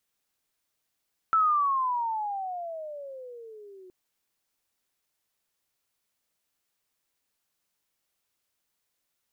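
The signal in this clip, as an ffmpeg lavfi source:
-f lavfi -i "aevalsrc='pow(10,(-18.5-27.5*t/2.57)/20)*sin(2*PI*1330*2.57/(-22.5*log(2)/12)*(exp(-22.5*log(2)/12*t/2.57)-1))':d=2.57:s=44100"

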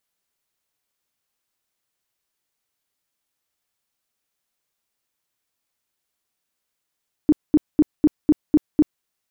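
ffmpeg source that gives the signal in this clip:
-f lavfi -i "aevalsrc='0.335*sin(2*PI*302*mod(t,0.25))*lt(mod(t,0.25),10/302)':d=1.75:s=44100"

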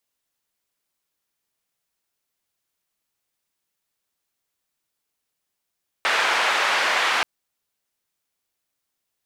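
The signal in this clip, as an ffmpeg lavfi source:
-f lavfi -i "anoisesrc=c=white:d=1.18:r=44100:seed=1,highpass=f=760,lowpass=f=2100,volume=-4.5dB"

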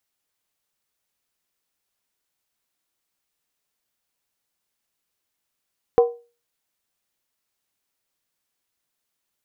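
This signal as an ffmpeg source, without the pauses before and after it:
-f lavfi -i "aevalsrc='0.398*pow(10,-3*t/0.33)*sin(2*PI*474*t)+0.133*pow(10,-3*t/0.261)*sin(2*PI*755.6*t)+0.0447*pow(10,-3*t/0.226)*sin(2*PI*1012.5*t)+0.015*pow(10,-3*t/0.218)*sin(2*PI*1088.3*t)+0.00501*pow(10,-3*t/0.203)*sin(2*PI*1257.5*t)':d=0.63:s=44100"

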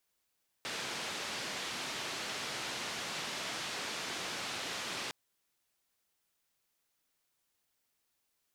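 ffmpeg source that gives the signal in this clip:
-f lavfi -i "anoisesrc=c=white:d=4.46:r=44100:seed=1,highpass=f=130,lowpass=f=4600,volume=-28.1dB"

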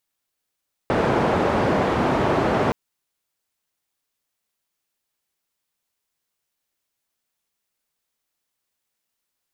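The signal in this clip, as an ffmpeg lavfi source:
-f lavfi -i "anoisesrc=c=white:d=1.82:r=44100:seed=1,highpass=f=82,lowpass=f=760,volume=-0.6dB"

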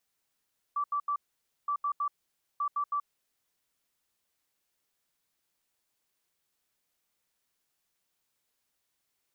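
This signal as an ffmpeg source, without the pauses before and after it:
-f lavfi -i "aevalsrc='0.0447*sin(2*PI*1160*t)*clip(min(mod(mod(t,0.92),0.16),0.08-mod(mod(t,0.92),0.16))/0.005,0,1)*lt(mod(t,0.92),0.48)':d=2.76:s=44100"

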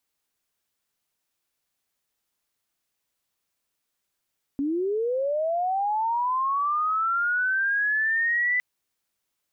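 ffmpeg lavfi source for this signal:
-f lavfi -i "aevalsrc='pow(10,(-23+2.5*t/4.01)/20)*sin(2*PI*(270*t+1730*t*t/(2*4.01)))':d=4.01:s=44100"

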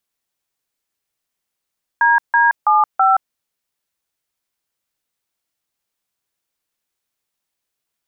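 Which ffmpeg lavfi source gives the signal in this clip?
-f lavfi -i "aevalsrc='0.237*clip(min(mod(t,0.328),0.173-mod(t,0.328))/0.002,0,1)*(eq(floor(t/0.328),0)*(sin(2*PI*941*mod(t,0.328))+sin(2*PI*1633*mod(t,0.328)))+eq(floor(t/0.328),1)*(sin(2*PI*941*mod(t,0.328))+sin(2*PI*1633*mod(t,0.328)))+eq(floor(t/0.328),2)*(sin(2*PI*852*mod(t,0.328))+sin(2*PI*1209*mod(t,0.328)))+eq(floor(t/0.328),3)*(sin(2*PI*770*mod(t,0.328))+sin(2*PI*1336*mod(t,0.328))))':d=1.312:s=44100"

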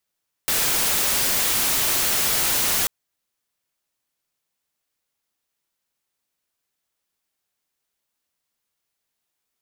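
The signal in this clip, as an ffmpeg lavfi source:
-f lavfi -i "anoisesrc=c=white:a=0.154:d=2.39:r=44100:seed=1"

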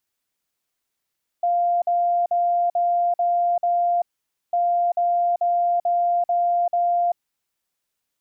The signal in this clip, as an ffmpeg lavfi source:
-f lavfi -i "aevalsrc='0.141*sin(2*PI*698*t)*clip(min(mod(mod(t,3.1),0.44),0.39-mod(mod(t,3.1),0.44))/0.005,0,1)*lt(mod(t,3.1),2.64)':d=6.2:s=44100"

